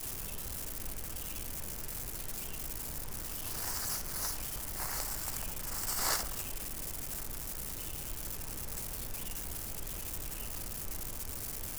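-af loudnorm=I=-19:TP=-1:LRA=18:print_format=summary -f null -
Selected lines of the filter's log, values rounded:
Input Integrated:    -37.6 LUFS
Input True Peak:     -17.6 dBTP
Input LRA:             3.4 LU
Input Threshold:     -47.6 LUFS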